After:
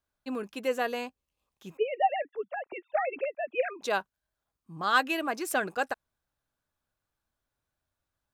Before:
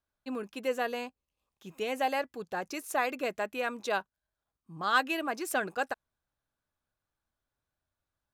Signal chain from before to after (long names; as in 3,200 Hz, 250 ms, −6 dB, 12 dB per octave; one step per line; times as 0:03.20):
0:01.77–0:03.82: three sine waves on the formant tracks
level +2 dB